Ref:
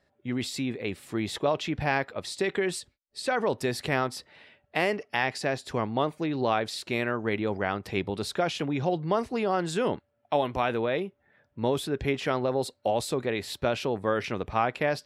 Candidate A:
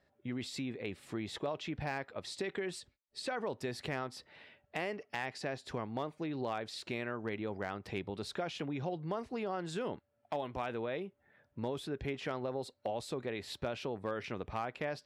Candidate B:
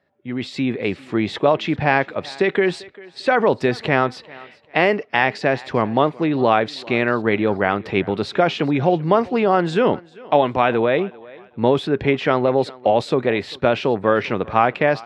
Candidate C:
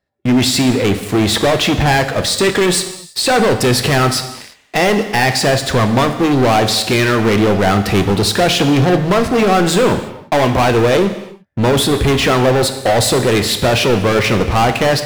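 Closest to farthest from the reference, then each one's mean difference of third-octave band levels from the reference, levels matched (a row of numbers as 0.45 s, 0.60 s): A, B, C; 2.0 dB, 3.5 dB, 9.5 dB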